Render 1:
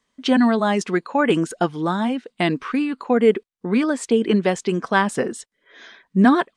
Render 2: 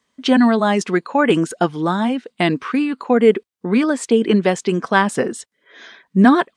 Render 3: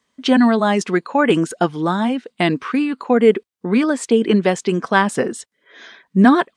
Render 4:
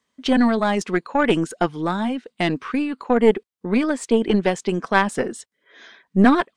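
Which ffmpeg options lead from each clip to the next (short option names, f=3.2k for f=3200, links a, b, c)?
-af "highpass=64,volume=3dB"
-af anull
-af "aeval=exprs='0.891*(cos(1*acos(clip(val(0)/0.891,-1,1)))-cos(1*PI/2))+0.224*(cos(2*acos(clip(val(0)/0.891,-1,1)))-cos(2*PI/2))+0.0158*(cos(7*acos(clip(val(0)/0.891,-1,1)))-cos(7*PI/2))':c=same,volume=-3.5dB"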